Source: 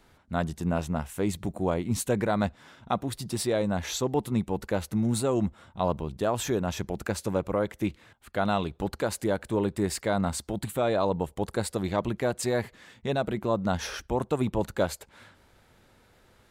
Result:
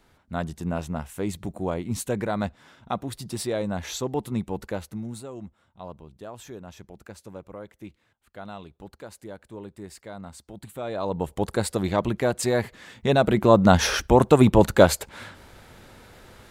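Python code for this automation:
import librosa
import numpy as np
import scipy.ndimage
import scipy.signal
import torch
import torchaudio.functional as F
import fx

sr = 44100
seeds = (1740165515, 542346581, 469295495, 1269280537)

y = fx.gain(x, sr, db=fx.line((4.65, -1.0), (5.3, -13.0), (10.32, -13.0), (10.93, -5.5), (11.31, 4.0), (12.63, 4.0), (13.59, 11.5)))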